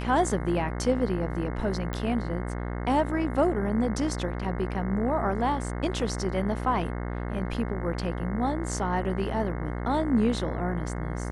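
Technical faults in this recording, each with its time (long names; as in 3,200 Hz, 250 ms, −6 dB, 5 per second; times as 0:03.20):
mains buzz 60 Hz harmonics 36 −32 dBFS
0:01.93: click −19 dBFS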